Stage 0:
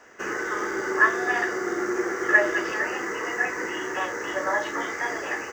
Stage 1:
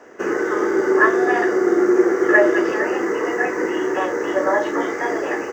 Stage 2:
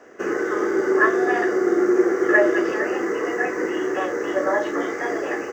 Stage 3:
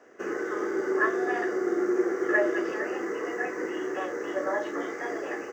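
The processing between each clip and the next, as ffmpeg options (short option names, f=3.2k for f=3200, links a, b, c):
-af "equalizer=f=370:w=0.48:g=13.5,volume=-1dB"
-af "bandreject=f=920:w=8.8,volume=-2.5dB"
-af "lowshelf=f=70:g=-9,volume=-7.5dB"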